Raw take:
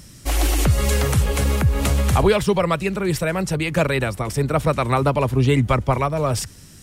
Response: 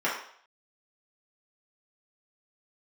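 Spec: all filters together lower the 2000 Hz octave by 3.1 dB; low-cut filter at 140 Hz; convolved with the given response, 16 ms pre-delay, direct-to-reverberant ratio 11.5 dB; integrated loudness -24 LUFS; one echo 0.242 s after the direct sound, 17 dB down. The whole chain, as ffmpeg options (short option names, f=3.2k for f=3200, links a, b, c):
-filter_complex "[0:a]highpass=140,equalizer=f=2k:t=o:g=-4,aecho=1:1:242:0.141,asplit=2[a][b];[1:a]atrim=start_sample=2205,adelay=16[c];[b][c]afir=irnorm=-1:irlink=0,volume=-24dB[d];[a][d]amix=inputs=2:normalize=0,volume=-2dB"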